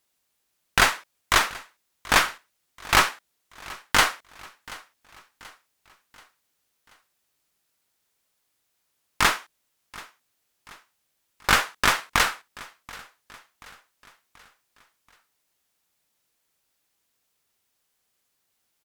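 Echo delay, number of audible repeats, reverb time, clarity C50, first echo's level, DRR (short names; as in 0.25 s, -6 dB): 0.732 s, 3, none, none, -21.0 dB, none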